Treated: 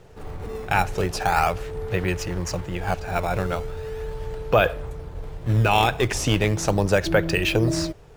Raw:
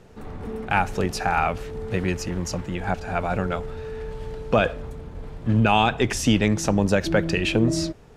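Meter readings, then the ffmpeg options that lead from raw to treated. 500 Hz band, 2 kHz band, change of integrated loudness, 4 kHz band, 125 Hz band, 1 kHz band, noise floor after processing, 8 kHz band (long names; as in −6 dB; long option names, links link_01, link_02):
+1.5 dB, +1.0 dB, 0.0 dB, +1.0 dB, +1.5 dB, +0.5 dB, −42 dBFS, +0.5 dB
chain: -filter_complex "[0:a]equalizer=frequency=230:width_type=o:width=0.53:gain=-13,asplit=2[link_01][link_02];[link_02]acrusher=samples=16:mix=1:aa=0.000001:lfo=1:lforange=25.6:lforate=0.38,volume=-9dB[link_03];[link_01][link_03]amix=inputs=2:normalize=0"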